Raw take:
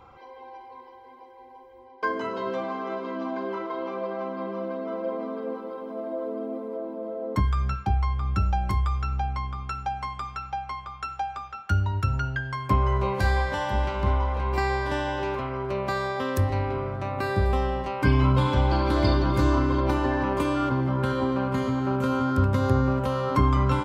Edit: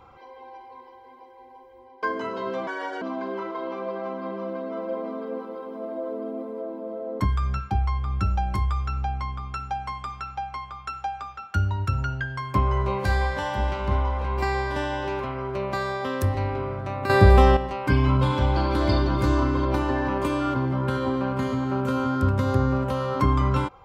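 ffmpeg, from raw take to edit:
-filter_complex "[0:a]asplit=5[a][b][c][d][e];[a]atrim=end=2.674[f];[b]atrim=start=2.67:end=3.17,asetpts=PTS-STARTPTS,asetrate=63504,aresample=44100,atrim=end_sample=15312,asetpts=PTS-STARTPTS[g];[c]atrim=start=3.166:end=17.252[h];[d]atrim=start=17.248:end=17.722,asetpts=PTS-STARTPTS,volume=9.5dB[i];[e]atrim=start=17.718[j];[f][g]acrossfade=d=0.004:c1=hsin:c2=hsin[k];[k][h]acrossfade=d=0.004:c1=hsin:c2=hsin[l];[l][i]acrossfade=d=0.004:c1=hsin:c2=hsin[m];[m][j]acrossfade=d=0.004:c1=hsin:c2=hsin"

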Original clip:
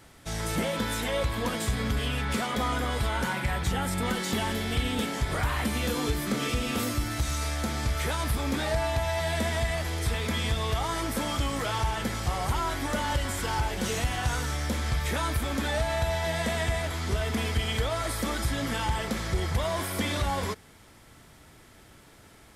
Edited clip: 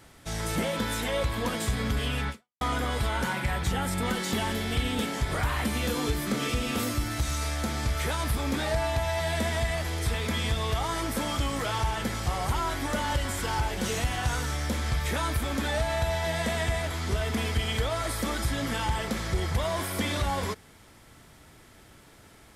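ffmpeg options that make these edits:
-filter_complex "[0:a]asplit=2[a][b];[a]atrim=end=2.61,asetpts=PTS-STARTPTS,afade=t=out:st=2.29:d=0.32:c=exp[c];[b]atrim=start=2.61,asetpts=PTS-STARTPTS,afade=t=in:d=0.004:c=hsin[d];[c][d]concat=n=2:v=0:a=1"

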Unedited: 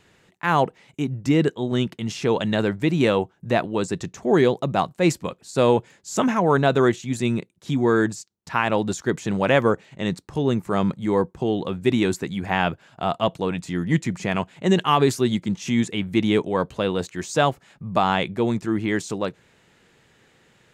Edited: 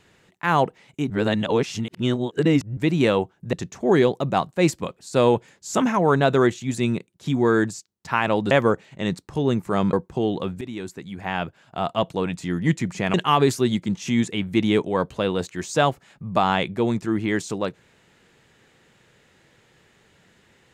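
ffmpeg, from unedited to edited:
-filter_complex "[0:a]asplit=8[a][b][c][d][e][f][g][h];[a]atrim=end=1.102[i];[b]atrim=start=1.098:end=2.772,asetpts=PTS-STARTPTS,areverse[j];[c]atrim=start=2.768:end=3.532[k];[d]atrim=start=3.948:end=8.932[l];[e]atrim=start=9.508:end=10.932[m];[f]atrim=start=11.178:end=11.86,asetpts=PTS-STARTPTS,afade=t=out:st=0.678:d=0.004:c=hsin:silence=0.16788[n];[g]atrim=start=11.86:end=14.392,asetpts=PTS-STARTPTS,afade=t=in:d=1.56:silence=0.16788[o];[h]atrim=start=14.738[p];[i][j]acrossfade=d=0.004:c1=hsin:c2=hsin[q];[q][k]acrossfade=d=0.004:c1=hsin:c2=hsin[r];[r][l]acrossfade=d=0.004:c1=hsin:c2=hsin[s];[s][m]acrossfade=d=0.004:c1=hsin:c2=hsin[t];[n][o]concat=n=2:v=0:a=1[u];[t][u]acrossfade=d=0.004:c1=hsin:c2=hsin[v];[v][p]acrossfade=d=0.004:c1=hsin:c2=hsin"

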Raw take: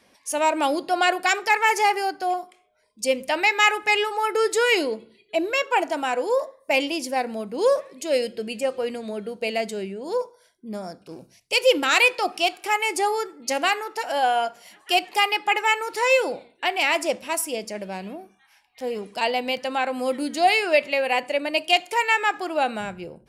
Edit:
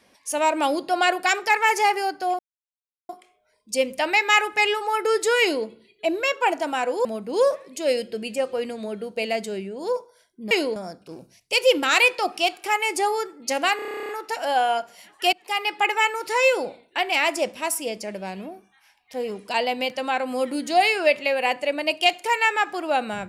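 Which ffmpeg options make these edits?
-filter_complex "[0:a]asplit=17[a][b][c][d][e][f][g][h][i][j][k][l][m][n][o][p][q];[a]atrim=end=2.39,asetpts=PTS-STARTPTS,afade=t=out:st=2.386:d=0.004:c=hsin,apad=pad_dur=0.7[r];[b]atrim=start=2.39:end=6.352,asetpts=PTS-STARTPTS,afade=t=in:d=0.004:c=hsin[s];[c]atrim=start=7.298:end=10.762[t];[d]atrim=start=4.708:end=4.962[u];[e]atrim=start=10.758:end=13.792[v];[f]atrim=start=13.758:end=13.792[w];[g]atrim=start=13.758:end=13.792[x];[h]atrim=start=13.758:end=13.792[y];[i]atrim=start=13.758:end=13.792[z];[j]atrim=start=13.758:end=13.792[aa];[k]atrim=start=13.758:end=13.792[ab];[l]atrim=start=13.758:end=13.792[ac];[m]atrim=start=13.758:end=13.792[ad];[n]atrim=start=13.758:end=13.792[ae];[o]atrim=start=13.758:end=13.792[af];[p]atrim=start=13.758:end=15,asetpts=PTS-STARTPTS,afade=t=out:st=1.238:d=0.004:c=hsin:silence=0.0794328[ag];[q]atrim=start=15,asetpts=PTS-STARTPTS,afade=t=in:d=0.43:silence=0.0794328[ah];[r][s]concat=n=2:v=0:a=1[ai];[ai][t]acrossfade=d=0.004:c1=hsin:c2=hsin[aj];[aj][u]acrossfade=d=0.004:c1=hsin:c2=hsin[ak];[ak][v]acrossfade=d=0.004:c1=hsin:c2=hsin[al];[al][w]acrossfade=d=0.004:c1=hsin:c2=hsin[am];[am][x]acrossfade=d=0.004:c1=hsin:c2=hsin[an];[an][y]acrossfade=d=0.004:c1=hsin:c2=hsin[ao];[ao][z]acrossfade=d=0.004:c1=hsin:c2=hsin[ap];[ap][aa]acrossfade=d=0.004:c1=hsin:c2=hsin[aq];[aq][ab]acrossfade=d=0.004:c1=hsin:c2=hsin[ar];[ar][ac]acrossfade=d=0.004:c1=hsin:c2=hsin[as];[as][ad]acrossfade=d=0.004:c1=hsin:c2=hsin[at];[at][ae]acrossfade=d=0.004:c1=hsin:c2=hsin[au];[au][af]acrossfade=d=0.004:c1=hsin:c2=hsin[av];[ag][ah]concat=n=2:v=0:a=1[aw];[av][aw]acrossfade=d=0.004:c1=hsin:c2=hsin"

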